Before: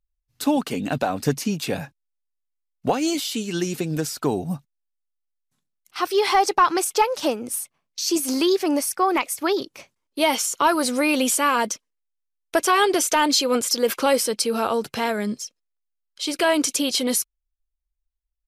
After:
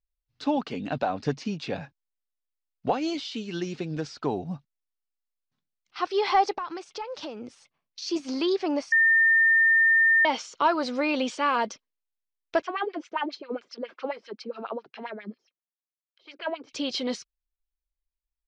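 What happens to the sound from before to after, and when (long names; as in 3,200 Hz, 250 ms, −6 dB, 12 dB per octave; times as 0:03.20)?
0:06.54–0:08.02: downward compressor 10 to 1, threshold −25 dBFS
0:08.92–0:10.25: beep over 1,810 Hz −10.5 dBFS
0:12.62–0:16.73: auto-filter band-pass sine 7.4 Hz 240–2,700 Hz
whole clip: inverse Chebyshev low-pass filter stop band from 11,000 Hz, stop band 50 dB; dynamic equaliser 780 Hz, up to +4 dB, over −29 dBFS, Q 1.1; level −6.5 dB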